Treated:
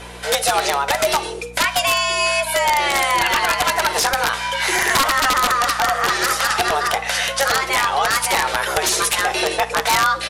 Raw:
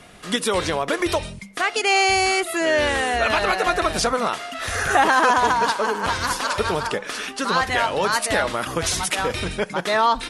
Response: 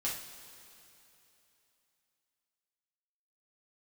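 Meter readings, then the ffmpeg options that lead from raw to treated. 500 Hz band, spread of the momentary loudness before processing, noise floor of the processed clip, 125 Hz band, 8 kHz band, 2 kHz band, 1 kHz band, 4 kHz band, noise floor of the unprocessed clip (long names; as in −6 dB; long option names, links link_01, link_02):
−0.5 dB, 9 LU, −30 dBFS, −2.5 dB, +6.5 dB, +3.5 dB, +2.5 dB, +5.5 dB, −38 dBFS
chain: -filter_complex "[0:a]highpass=frequency=90:poles=1,acompressor=threshold=-25dB:ratio=4,afreqshift=280,aeval=exprs='val(0)+0.00447*(sin(2*PI*60*n/s)+sin(2*PI*2*60*n/s)/2+sin(2*PI*3*60*n/s)/3+sin(2*PI*4*60*n/s)/4+sin(2*PI*5*60*n/s)/5)':channel_layout=same,aecho=1:1:11|55:0.355|0.126,aeval=exprs='(mod(7.5*val(0)+1,2)-1)/7.5':channel_layout=same,asplit=2[link_01][link_02];[1:a]atrim=start_sample=2205,atrim=end_sample=6174,asetrate=25137,aresample=44100[link_03];[link_02][link_03]afir=irnorm=-1:irlink=0,volume=-24dB[link_04];[link_01][link_04]amix=inputs=2:normalize=0,aresample=32000,aresample=44100,volume=8.5dB"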